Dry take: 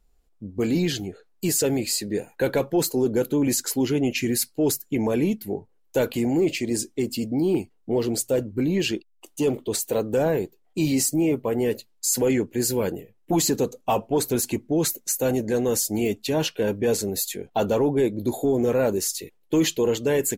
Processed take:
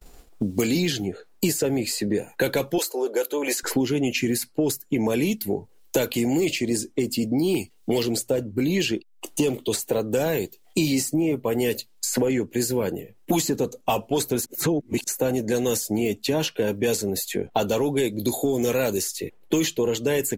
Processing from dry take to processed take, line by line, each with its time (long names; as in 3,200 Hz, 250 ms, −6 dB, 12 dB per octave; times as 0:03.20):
0:02.78–0:03.63: high-pass filter 450 Hz 24 dB per octave
0:14.46–0:15.04: reverse
whole clip: downward expander −56 dBFS; multiband upward and downward compressor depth 100%; level −1 dB